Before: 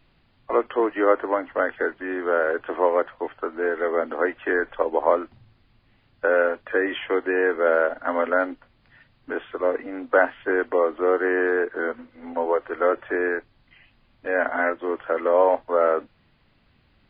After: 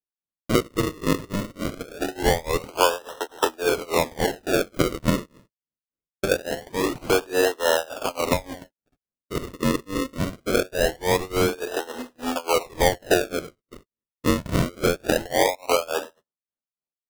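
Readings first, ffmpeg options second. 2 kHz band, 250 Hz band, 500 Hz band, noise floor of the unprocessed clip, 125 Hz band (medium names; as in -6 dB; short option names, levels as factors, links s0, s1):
-3.5 dB, +3.0 dB, -2.5 dB, -62 dBFS, no reading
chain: -filter_complex "[0:a]dynaudnorm=f=340:g=11:m=2.82,highpass=f=150:w=0.5412,highpass=f=150:w=1.3066,equalizer=f=860:t=o:w=2.4:g=8,asplit=2[s0][s1];[s1]acrusher=bits=2:mode=log:mix=0:aa=0.000001,volume=0.251[s2];[s0][s2]amix=inputs=2:normalize=0,bass=f=250:g=0,treble=f=4000:g=6,acompressor=threshold=0.141:ratio=4,asplit=2[s3][s4];[s4]adelay=109,lowpass=f=2700:p=1,volume=0.15,asplit=2[s5][s6];[s6]adelay=109,lowpass=f=2700:p=1,volume=0.3,asplit=2[s7][s8];[s8]adelay=109,lowpass=f=2700:p=1,volume=0.3[s9];[s5][s7][s9]amix=inputs=3:normalize=0[s10];[s3][s10]amix=inputs=2:normalize=0,tremolo=f=3.5:d=0.95,agate=range=0.00562:threshold=0.00447:ratio=16:detection=peak,acrusher=samples=38:mix=1:aa=0.000001:lfo=1:lforange=38:lforate=0.23"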